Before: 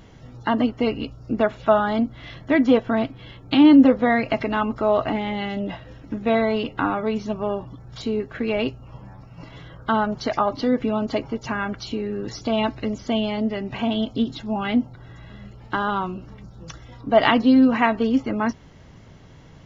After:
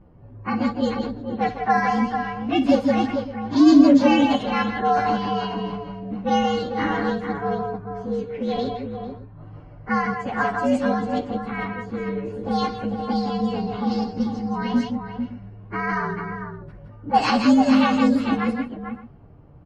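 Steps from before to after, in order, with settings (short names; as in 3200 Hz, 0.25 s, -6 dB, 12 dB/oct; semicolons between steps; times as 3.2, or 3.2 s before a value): inharmonic rescaling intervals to 117%; tapped delay 59/162/169/445/563 ms -13.5/-7/-9/-7/-17.5 dB; low-pass opened by the level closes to 900 Hz, open at -14 dBFS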